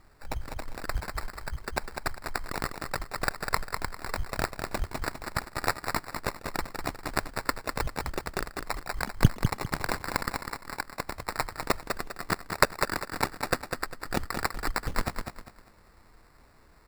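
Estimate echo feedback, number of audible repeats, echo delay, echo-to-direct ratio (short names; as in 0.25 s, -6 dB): 30%, 3, 0.2 s, -6.0 dB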